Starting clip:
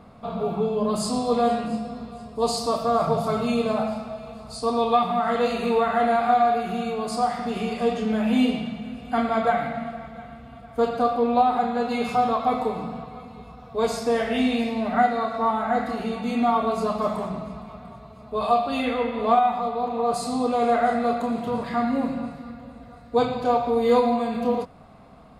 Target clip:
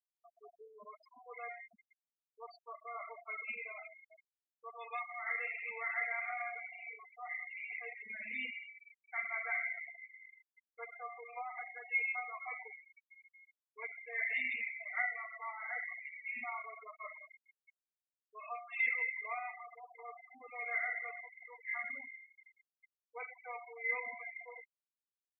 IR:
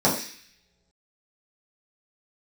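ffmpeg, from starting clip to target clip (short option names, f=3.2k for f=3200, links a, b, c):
-af "bandpass=f=2.1k:t=q:w=19:csg=0,afftfilt=real='re*gte(hypot(re,im),0.00501)':imag='im*gte(hypot(re,im),0.00501)':win_size=1024:overlap=0.75,volume=8.5dB"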